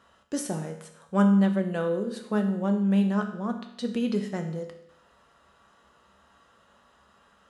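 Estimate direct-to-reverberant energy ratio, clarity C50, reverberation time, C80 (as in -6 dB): 4.0 dB, 8.5 dB, 0.80 s, 11.0 dB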